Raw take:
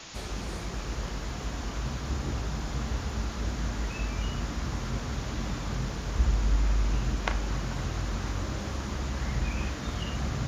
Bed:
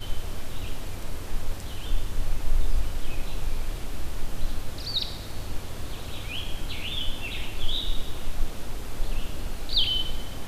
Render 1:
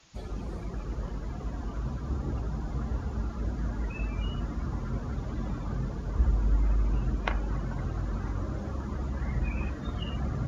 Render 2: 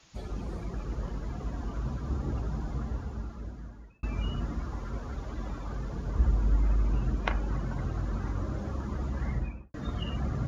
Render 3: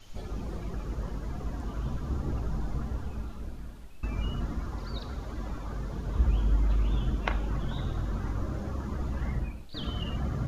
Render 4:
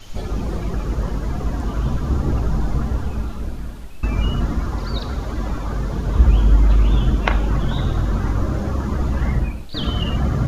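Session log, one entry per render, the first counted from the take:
broadband denoise 16 dB, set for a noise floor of −37 dBFS
0:02.60–0:04.03: fade out; 0:04.62–0:05.92: parametric band 150 Hz −8 dB 1.8 octaves; 0:09.26–0:09.74: fade out and dull
mix in bed −19 dB
level +12 dB; brickwall limiter −1 dBFS, peak gain reduction 1.5 dB

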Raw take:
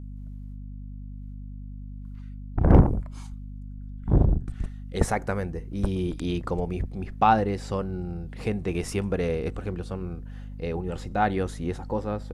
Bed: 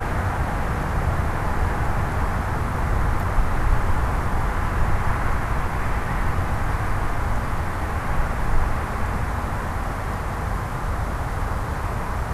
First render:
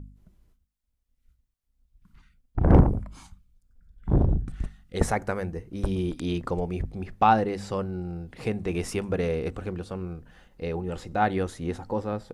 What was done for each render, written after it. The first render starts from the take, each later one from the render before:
hum removal 50 Hz, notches 5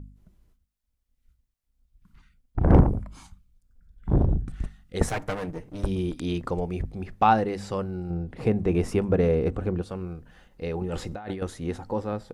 0:05.09–0:05.83: lower of the sound and its delayed copy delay 6.5 ms
0:08.10–0:09.82: tilt shelving filter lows +6 dB, about 1,500 Hz
0:10.81–0:11.42: compressor whose output falls as the input rises −33 dBFS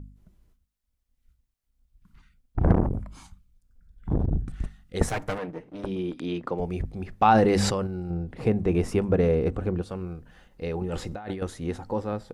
0:02.72–0:04.33: saturating transformer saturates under 360 Hz
0:05.38–0:06.60: three-way crossover with the lows and the highs turned down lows −17 dB, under 160 Hz, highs −13 dB, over 4,000 Hz
0:07.25–0:07.87: level that may fall only so fast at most 23 dB per second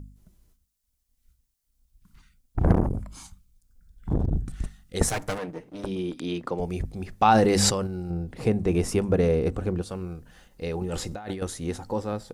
bass and treble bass 0 dB, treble +10 dB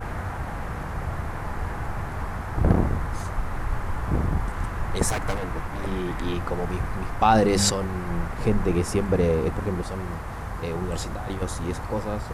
mix in bed −7.5 dB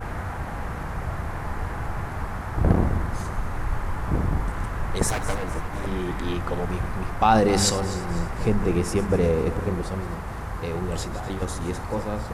feedback delay that plays each chunk backwards 126 ms, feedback 67%, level −13.5 dB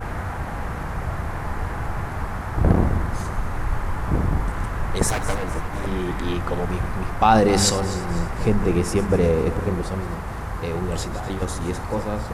level +2.5 dB
brickwall limiter −3 dBFS, peak gain reduction 1 dB

